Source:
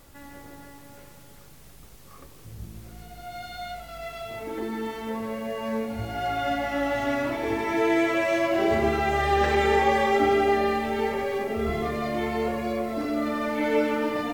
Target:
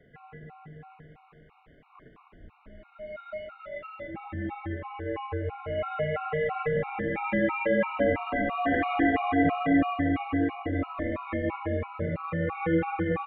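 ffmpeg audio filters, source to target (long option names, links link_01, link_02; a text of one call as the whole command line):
ffmpeg -i in.wav -filter_complex "[0:a]asubboost=boost=4.5:cutoff=110,highpass=frequency=180:width_type=q:width=0.5412,highpass=frequency=180:width_type=q:width=1.307,lowpass=frequency=2600:width_type=q:width=0.5176,lowpass=frequency=2600:width_type=q:width=0.7071,lowpass=frequency=2600:width_type=q:width=1.932,afreqshift=-140,asetrate=47628,aresample=44100,asplit=2[link_01][link_02];[link_02]adelay=208,lowpass=frequency=1700:poles=1,volume=-4.5dB,asplit=2[link_03][link_04];[link_04]adelay=208,lowpass=frequency=1700:poles=1,volume=0.53,asplit=2[link_05][link_06];[link_06]adelay=208,lowpass=frequency=1700:poles=1,volume=0.53,asplit=2[link_07][link_08];[link_08]adelay=208,lowpass=frequency=1700:poles=1,volume=0.53,asplit=2[link_09][link_10];[link_10]adelay=208,lowpass=frequency=1700:poles=1,volume=0.53,asplit=2[link_11][link_12];[link_12]adelay=208,lowpass=frequency=1700:poles=1,volume=0.53,asplit=2[link_13][link_14];[link_14]adelay=208,lowpass=frequency=1700:poles=1,volume=0.53[link_15];[link_03][link_05][link_07][link_09][link_11][link_13][link_15]amix=inputs=7:normalize=0[link_16];[link_01][link_16]amix=inputs=2:normalize=0,afftfilt=real='re*gt(sin(2*PI*3*pts/sr)*(1-2*mod(floor(b*sr/1024/730),2)),0)':imag='im*gt(sin(2*PI*3*pts/sr)*(1-2*mod(floor(b*sr/1024/730),2)),0)':win_size=1024:overlap=0.75" out.wav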